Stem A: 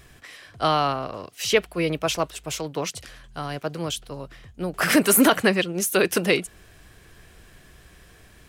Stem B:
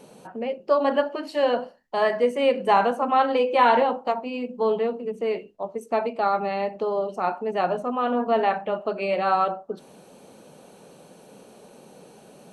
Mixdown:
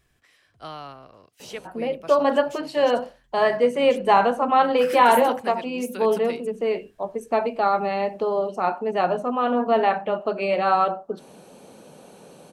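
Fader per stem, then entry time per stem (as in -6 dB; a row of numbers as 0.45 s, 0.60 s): -16.0 dB, +2.0 dB; 0.00 s, 1.40 s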